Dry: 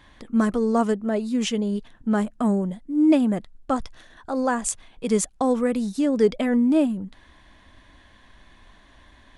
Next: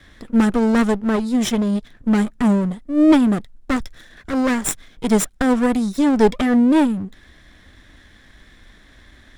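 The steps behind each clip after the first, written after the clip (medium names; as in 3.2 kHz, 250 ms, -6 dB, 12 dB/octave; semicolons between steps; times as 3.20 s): comb filter that takes the minimum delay 0.55 ms; trim +5.5 dB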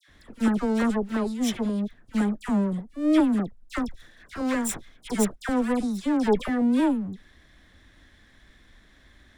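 phase dispersion lows, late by 81 ms, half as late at 1.6 kHz; trim -7.5 dB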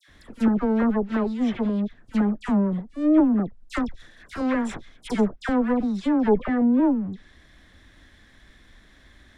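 low-pass that closes with the level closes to 1 kHz, closed at -18.5 dBFS; trim +2.5 dB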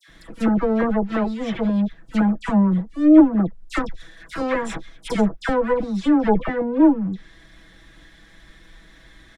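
comb 6.1 ms, depth 83%; trim +2.5 dB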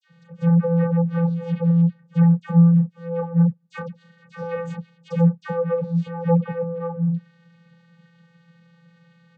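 vocoder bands 16, square 169 Hz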